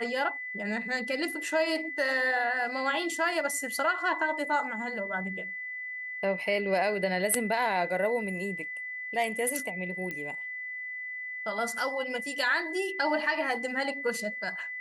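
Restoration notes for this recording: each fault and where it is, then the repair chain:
tone 2000 Hz -35 dBFS
10.11 pop -22 dBFS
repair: de-click; notch 2000 Hz, Q 30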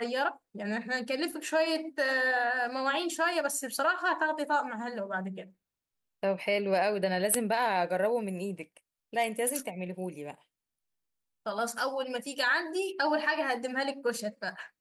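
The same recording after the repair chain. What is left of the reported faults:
none

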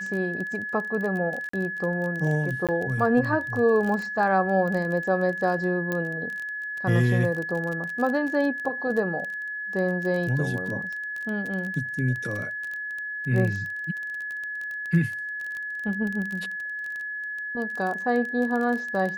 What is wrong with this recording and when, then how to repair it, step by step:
crackle 23/s -29 dBFS
tone 1700 Hz -30 dBFS
1.49–1.53 gap 44 ms
2.67–2.69 gap 17 ms
5.92 pop -15 dBFS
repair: de-click; notch 1700 Hz, Q 30; interpolate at 1.49, 44 ms; interpolate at 2.67, 17 ms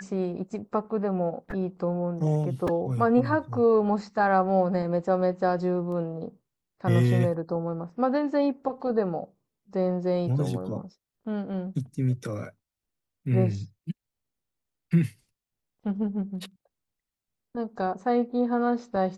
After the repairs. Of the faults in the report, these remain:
5.92 pop

